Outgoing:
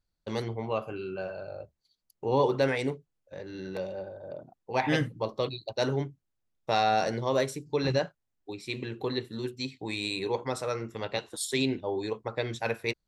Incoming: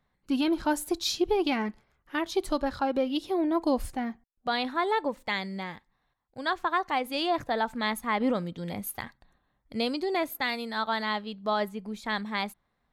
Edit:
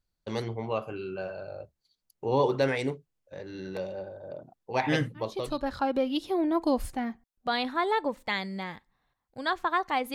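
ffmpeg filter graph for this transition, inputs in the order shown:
ffmpeg -i cue0.wav -i cue1.wav -filter_complex "[0:a]apad=whole_dur=10.14,atrim=end=10.14,atrim=end=5.79,asetpts=PTS-STARTPTS[link_01];[1:a]atrim=start=2.13:end=7.14,asetpts=PTS-STARTPTS[link_02];[link_01][link_02]acrossfade=duration=0.66:curve1=tri:curve2=tri" out.wav

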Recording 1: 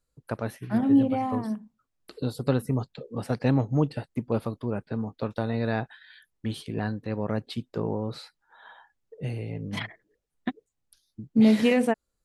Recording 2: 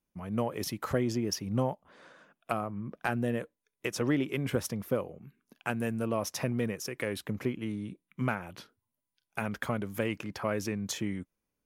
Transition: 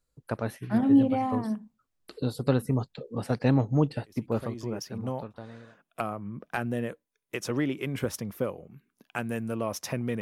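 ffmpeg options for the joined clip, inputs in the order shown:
ffmpeg -i cue0.wav -i cue1.wav -filter_complex "[0:a]apad=whole_dur=10.21,atrim=end=10.21,atrim=end=5.77,asetpts=PTS-STARTPTS[link_01];[1:a]atrim=start=0.48:end=6.72,asetpts=PTS-STARTPTS[link_02];[link_01][link_02]acrossfade=duration=1.8:curve1=tri:curve2=tri" out.wav

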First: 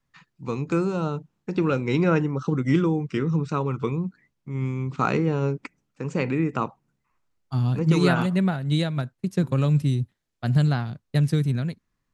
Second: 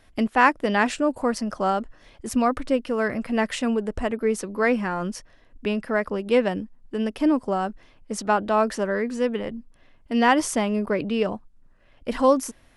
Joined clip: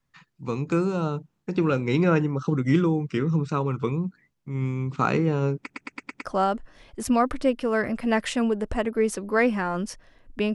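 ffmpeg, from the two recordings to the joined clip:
ffmpeg -i cue0.wav -i cue1.wav -filter_complex "[0:a]apad=whole_dur=10.54,atrim=end=10.54,asplit=6[link_01][link_02][link_03][link_04][link_05][link_06];[link_01]atrim=end=5.702[link_07];[link_02]atrim=start=5.588:end=5.702[link_08];[link_03]atrim=start=5.588:end=5.702[link_09];[link_04]atrim=start=5.588:end=5.702[link_10];[link_05]atrim=start=5.588:end=5.702[link_11];[link_06]atrim=start=5.588:end=5.702[link_12];[1:a]atrim=start=1.508:end=5.8[link_13];[link_07][link_08]acrossfade=duration=0.004:curve1=hsin:curve2=hsin[link_14];[link_14][link_09]acrossfade=duration=0.004:curve1=hsin:curve2=hsin[link_15];[link_15][link_10]acrossfade=duration=0.004:curve1=hsin:curve2=hsin[link_16];[link_16][link_11]acrossfade=duration=0.004:curve1=hsin:curve2=hsin[link_17];[link_17][link_12]acrossfade=duration=0.004:curve1=hsin:curve2=hsin[link_18];[link_18][link_13]acrossfade=duration=0.004:curve1=hsin:curve2=hsin" out.wav

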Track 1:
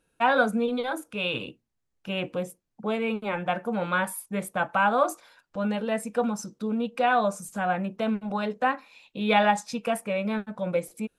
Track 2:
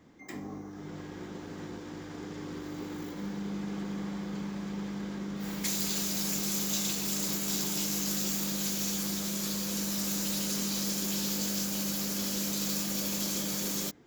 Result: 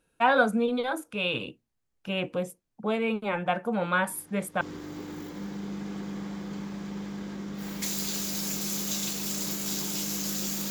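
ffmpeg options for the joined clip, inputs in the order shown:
ffmpeg -i cue0.wav -i cue1.wav -filter_complex "[1:a]asplit=2[link_01][link_02];[0:a]apad=whole_dur=10.7,atrim=end=10.7,atrim=end=4.612[link_03];[link_02]atrim=start=2.428:end=8.52[link_04];[link_01]atrim=start=1.89:end=2.43,asetpts=PTS-STARTPTS,volume=-12.5dB,afade=type=in:duration=0.004:curve=hsin,afade=type=out:start_time=0.536:duration=0.004:curve=hsin,adelay=4070[link_05];[link_03][link_04]acrossfade=duration=0.004:curve1=hsin:curve2=hsin[link_06];[link_06][link_05]amix=inputs=2:normalize=0" out.wav

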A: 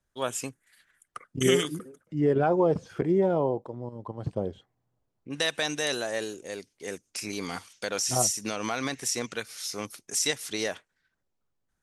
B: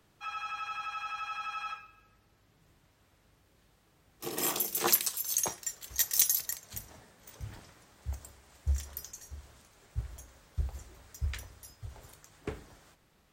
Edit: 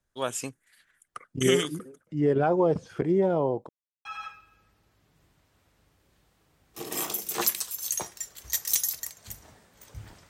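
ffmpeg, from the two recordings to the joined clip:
ffmpeg -i cue0.wav -i cue1.wav -filter_complex "[0:a]apad=whole_dur=10.29,atrim=end=10.29,asplit=2[link_01][link_02];[link_01]atrim=end=3.69,asetpts=PTS-STARTPTS,afade=type=out:start_time=3.686:duration=0.004:curve=hsin[link_03];[link_02]atrim=start=3.69:end=4.05,asetpts=PTS-STARTPTS,volume=0[link_04];[1:a]atrim=start=1.51:end=7.75,asetpts=PTS-STARTPTS,afade=type=in:duration=0.004:curve=hsin[link_05];[link_03][link_04][link_05]concat=n=3:v=0:a=1" out.wav

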